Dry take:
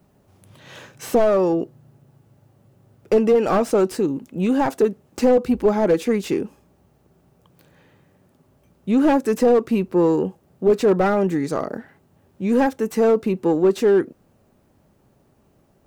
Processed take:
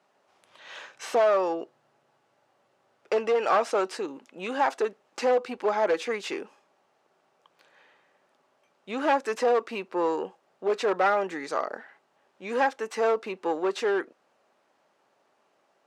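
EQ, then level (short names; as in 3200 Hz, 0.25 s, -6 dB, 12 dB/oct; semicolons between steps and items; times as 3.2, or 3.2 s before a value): HPF 770 Hz 12 dB/oct; air absorption 86 m; +1.5 dB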